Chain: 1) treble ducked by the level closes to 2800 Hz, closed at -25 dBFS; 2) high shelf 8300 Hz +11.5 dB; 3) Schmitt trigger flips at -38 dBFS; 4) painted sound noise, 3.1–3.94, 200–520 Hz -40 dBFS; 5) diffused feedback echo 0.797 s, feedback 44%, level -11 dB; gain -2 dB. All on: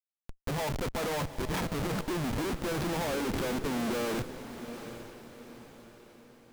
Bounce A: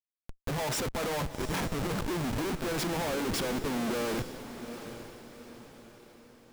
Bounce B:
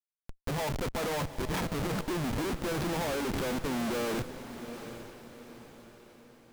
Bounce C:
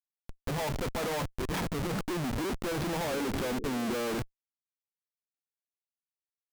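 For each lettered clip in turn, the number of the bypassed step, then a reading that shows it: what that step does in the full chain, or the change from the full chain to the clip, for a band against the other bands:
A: 1, 8 kHz band +3.0 dB; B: 4, crest factor change -2.0 dB; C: 5, echo-to-direct -10.0 dB to none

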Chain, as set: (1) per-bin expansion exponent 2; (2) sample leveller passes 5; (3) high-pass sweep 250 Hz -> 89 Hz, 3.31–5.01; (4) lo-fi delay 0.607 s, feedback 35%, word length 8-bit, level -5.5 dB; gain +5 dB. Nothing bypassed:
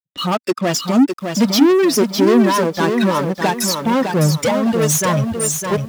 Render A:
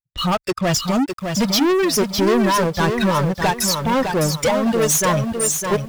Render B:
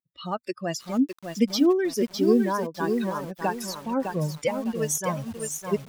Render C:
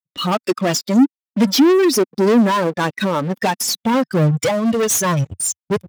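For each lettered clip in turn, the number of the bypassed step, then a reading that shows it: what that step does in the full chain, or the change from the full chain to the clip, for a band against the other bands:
3, 250 Hz band -4.0 dB; 2, crest factor change +2.5 dB; 4, crest factor change -1.5 dB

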